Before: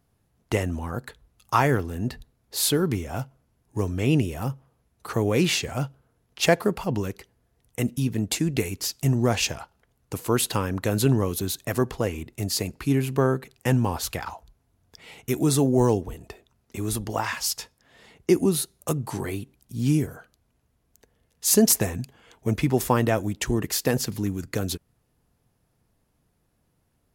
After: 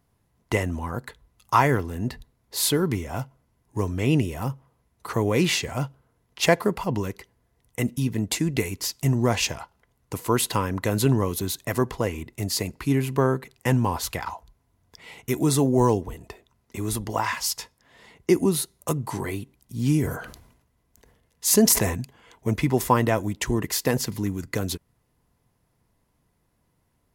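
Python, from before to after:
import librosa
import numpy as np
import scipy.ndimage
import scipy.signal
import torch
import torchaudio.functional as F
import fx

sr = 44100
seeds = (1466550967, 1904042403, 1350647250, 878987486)

y = fx.small_body(x, sr, hz=(1000.0, 2000.0), ring_ms=30, db=8)
y = fx.sustainer(y, sr, db_per_s=72.0, at=(19.81, 21.95))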